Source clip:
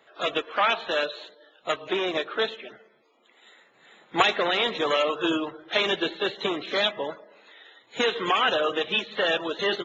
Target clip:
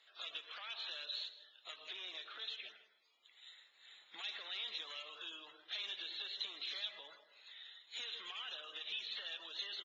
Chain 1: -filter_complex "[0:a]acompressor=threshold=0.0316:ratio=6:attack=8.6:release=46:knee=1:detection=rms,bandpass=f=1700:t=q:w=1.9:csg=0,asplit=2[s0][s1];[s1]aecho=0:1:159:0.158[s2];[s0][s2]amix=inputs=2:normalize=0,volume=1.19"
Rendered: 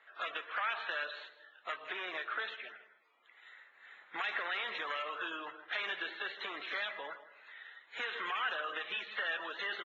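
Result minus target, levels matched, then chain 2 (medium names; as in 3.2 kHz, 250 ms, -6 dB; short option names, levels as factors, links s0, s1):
2 kHz band +7.5 dB; compression: peak gain reduction -6 dB
-filter_complex "[0:a]acompressor=threshold=0.0141:ratio=6:attack=8.6:release=46:knee=1:detection=rms,bandpass=f=4300:t=q:w=1.9:csg=0,asplit=2[s0][s1];[s1]aecho=0:1:159:0.158[s2];[s0][s2]amix=inputs=2:normalize=0,volume=1.19"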